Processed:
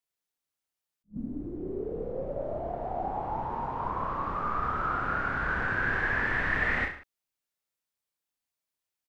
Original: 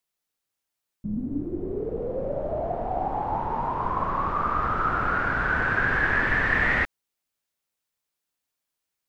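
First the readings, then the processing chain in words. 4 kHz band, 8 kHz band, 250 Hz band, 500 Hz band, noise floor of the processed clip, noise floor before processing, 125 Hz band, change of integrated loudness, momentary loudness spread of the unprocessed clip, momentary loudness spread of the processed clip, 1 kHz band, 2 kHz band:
-5.5 dB, no reading, -6.0 dB, -5.0 dB, under -85 dBFS, -84 dBFS, -5.5 dB, -5.5 dB, 9 LU, 10 LU, -5.5 dB, -5.5 dB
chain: reverse bouncing-ball echo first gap 30 ms, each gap 1.1×, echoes 5; attacks held to a fixed rise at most 390 dB/s; trim -7.5 dB

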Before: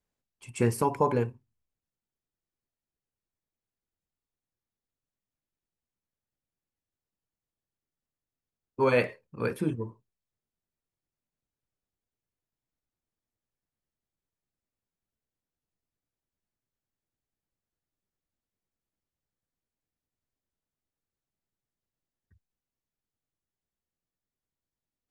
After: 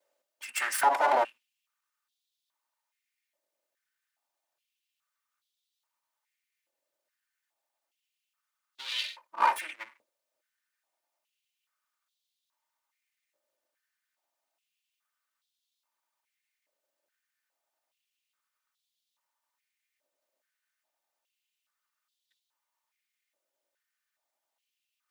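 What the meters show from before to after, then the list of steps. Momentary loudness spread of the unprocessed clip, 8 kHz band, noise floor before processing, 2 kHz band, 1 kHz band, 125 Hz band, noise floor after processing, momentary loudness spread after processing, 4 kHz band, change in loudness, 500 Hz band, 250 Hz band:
15 LU, no reading, under -85 dBFS, +3.5 dB, +6.5 dB, under -40 dB, under -85 dBFS, 19 LU, +11.5 dB, 0.0 dB, -7.0 dB, -20.0 dB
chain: comb filter that takes the minimum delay 3.3 ms; peak limiter -27 dBFS, peak gain reduction 11 dB; step-sequenced high-pass 2.4 Hz 560–3600 Hz; trim +8 dB

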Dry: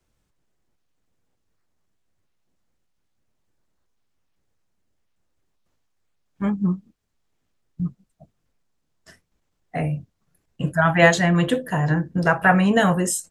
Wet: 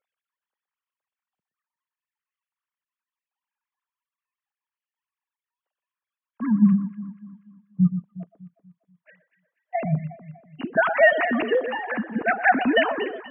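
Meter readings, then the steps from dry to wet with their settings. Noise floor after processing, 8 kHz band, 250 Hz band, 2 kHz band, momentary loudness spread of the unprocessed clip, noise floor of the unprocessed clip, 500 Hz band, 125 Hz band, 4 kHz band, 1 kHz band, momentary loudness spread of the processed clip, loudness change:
under -85 dBFS, under -40 dB, -1.0 dB, -0.5 dB, 15 LU, -74 dBFS, 0.0 dB, -5.5 dB, no reading, -1.5 dB, 19 LU, -1.5 dB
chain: formants replaced by sine waves; on a send: echo whose repeats swap between lows and highs 121 ms, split 1.5 kHz, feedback 64%, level -10 dB; on the sum: trim -2 dB

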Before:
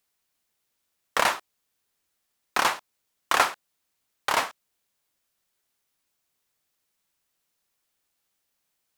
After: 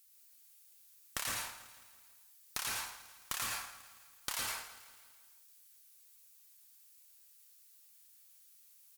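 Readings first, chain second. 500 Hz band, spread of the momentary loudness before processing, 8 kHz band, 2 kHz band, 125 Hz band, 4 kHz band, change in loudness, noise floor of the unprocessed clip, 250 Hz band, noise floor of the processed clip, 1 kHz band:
-21.5 dB, 12 LU, -4.0 dB, -14.5 dB, -5.5 dB, -9.5 dB, -13.5 dB, -78 dBFS, -14.5 dB, -63 dBFS, -19.5 dB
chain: inverse Chebyshev high-pass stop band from 160 Hz; differentiator; compression 16:1, threshold -45 dBFS, peak gain reduction 20 dB; one-sided clip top -41.5 dBFS; feedback delay 164 ms, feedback 55%, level -15.5 dB; plate-style reverb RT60 0.57 s, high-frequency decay 0.55×, pre-delay 100 ms, DRR -2 dB; trim +10 dB

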